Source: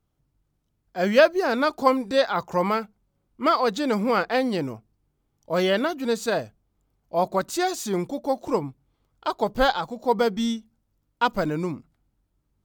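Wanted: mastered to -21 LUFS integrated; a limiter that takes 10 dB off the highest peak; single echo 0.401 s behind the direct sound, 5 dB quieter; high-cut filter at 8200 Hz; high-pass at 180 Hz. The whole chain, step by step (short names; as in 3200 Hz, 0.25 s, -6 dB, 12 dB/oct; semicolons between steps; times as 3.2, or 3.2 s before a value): HPF 180 Hz; LPF 8200 Hz; limiter -14.5 dBFS; echo 0.401 s -5 dB; gain +5.5 dB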